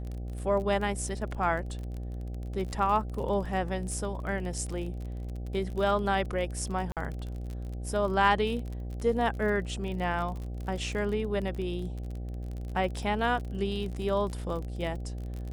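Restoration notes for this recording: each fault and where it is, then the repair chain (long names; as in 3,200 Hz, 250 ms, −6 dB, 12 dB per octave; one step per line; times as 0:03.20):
mains buzz 60 Hz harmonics 13 −36 dBFS
surface crackle 34 per second −35 dBFS
0:06.92–0:06.97: drop-out 47 ms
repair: click removal
hum removal 60 Hz, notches 13
repair the gap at 0:06.92, 47 ms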